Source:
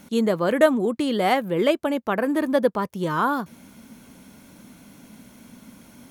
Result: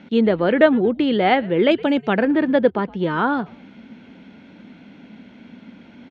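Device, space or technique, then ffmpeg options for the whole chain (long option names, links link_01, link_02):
frequency-shifting delay pedal into a guitar cabinet: -filter_complex "[0:a]asettb=1/sr,asplit=3[link_01][link_02][link_03];[link_01]atrim=end=1.714[link_04];[link_02]atrim=start=1.71:end=2.25,asetpts=PTS-STARTPTS,afade=type=in:duration=0.004:curve=qsin,afade=type=out:start_time=0.536:duration=0.004:curve=qsin,bass=frequency=250:gain=5,treble=frequency=4000:gain=15[link_05];[link_03]atrim=start=2.246[link_06];[link_04][link_05]acrossfade=duration=0.004:curve1=hsin:curve2=qsin[link_07];[link_07][link_06]acrossfade=duration=0.004:curve1=qsin:curve2=hsin,asplit=3[link_08][link_09][link_10];[link_09]adelay=115,afreqshift=-140,volume=-22.5dB[link_11];[link_10]adelay=230,afreqshift=-280,volume=-31.4dB[link_12];[link_08][link_11][link_12]amix=inputs=3:normalize=0,highpass=78,equalizer=frequency=79:width_type=q:width=4:gain=-9,equalizer=frequency=130:width_type=q:width=4:gain=-10,equalizer=frequency=590:width_type=q:width=4:gain=-3,equalizer=frequency=1100:width_type=q:width=4:gain=-10,lowpass=frequency=3400:width=0.5412,lowpass=frequency=3400:width=1.3066,volume=5.5dB"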